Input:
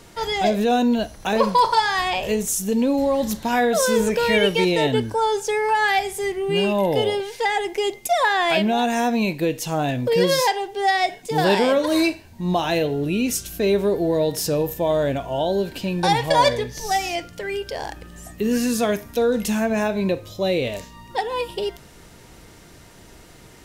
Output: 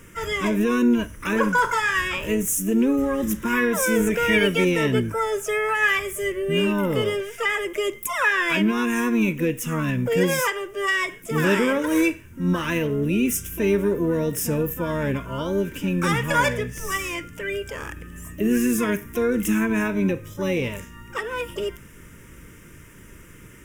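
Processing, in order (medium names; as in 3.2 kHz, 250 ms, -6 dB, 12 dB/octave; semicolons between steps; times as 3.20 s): harmony voices +7 st -8 dB; static phaser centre 1.8 kHz, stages 4; trim +2 dB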